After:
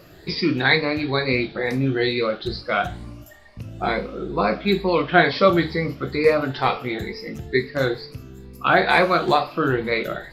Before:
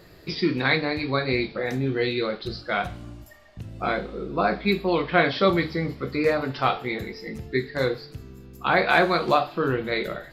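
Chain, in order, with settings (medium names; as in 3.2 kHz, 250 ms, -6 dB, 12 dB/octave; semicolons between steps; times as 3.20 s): drifting ripple filter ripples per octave 0.91, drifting +2.2 Hz, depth 8 dB; trim +2.5 dB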